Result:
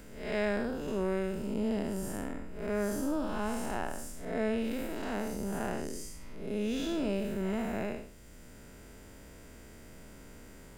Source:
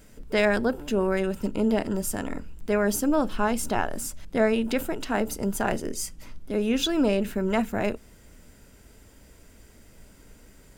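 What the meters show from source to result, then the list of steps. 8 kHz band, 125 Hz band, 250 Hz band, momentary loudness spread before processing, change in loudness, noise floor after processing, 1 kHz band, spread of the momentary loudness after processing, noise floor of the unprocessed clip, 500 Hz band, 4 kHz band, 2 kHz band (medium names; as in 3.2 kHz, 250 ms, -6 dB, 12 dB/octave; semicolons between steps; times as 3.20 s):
-11.5 dB, -6.0 dB, -7.5 dB, 8 LU, -8.0 dB, -51 dBFS, -9.0 dB, 20 LU, -53 dBFS, -8.5 dB, -11.5 dB, -9.5 dB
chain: spectral blur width 199 ms; three bands compressed up and down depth 40%; trim -5 dB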